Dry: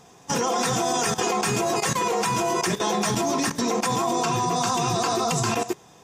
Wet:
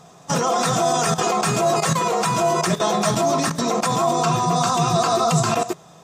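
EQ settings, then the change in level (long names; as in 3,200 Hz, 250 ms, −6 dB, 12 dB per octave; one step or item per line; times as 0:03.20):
thirty-one-band graphic EQ 160 Hz +12 dB, 630 Hz +11 dB, 1,250 Hz +9 dB, 4,000 Hz +5 dB, 8,000 Hz +4 dB
0.0 dB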